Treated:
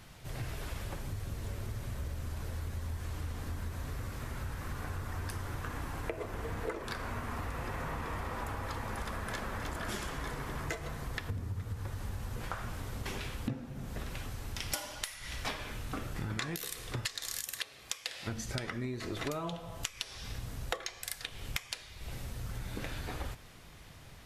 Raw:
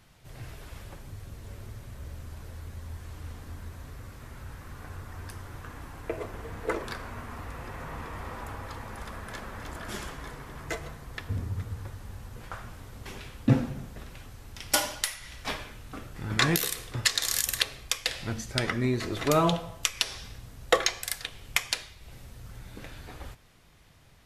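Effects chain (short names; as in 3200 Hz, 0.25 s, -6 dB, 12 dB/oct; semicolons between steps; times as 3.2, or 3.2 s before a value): 17.43–18.26 HPF 220 Hz -> 490 Hz 6 dB/oct; compressor 16:1, threshold -39 dBFS, peak gain reduction 24.5 dB; gain +5.5 dB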